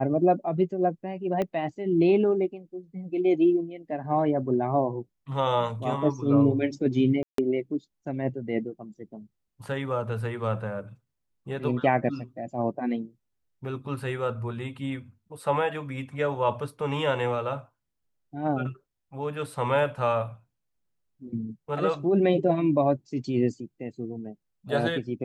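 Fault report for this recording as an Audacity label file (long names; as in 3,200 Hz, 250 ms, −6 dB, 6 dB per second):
1.420000	1.420000	click −17 dBFS
7.230000	7.380000	drop-out 153 ms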